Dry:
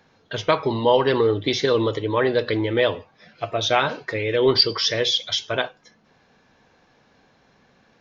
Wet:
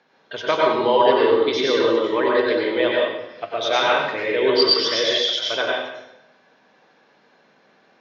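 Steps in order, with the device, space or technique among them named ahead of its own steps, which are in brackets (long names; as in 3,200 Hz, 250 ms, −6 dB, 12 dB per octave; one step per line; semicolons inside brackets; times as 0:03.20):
supermarket ceiling speaker (band-pass filter 280–5,000 Hz; convolution reverb RT60 0.90 s, pre-delay 89 ms, DRR −3.5 dB)
level −2 dB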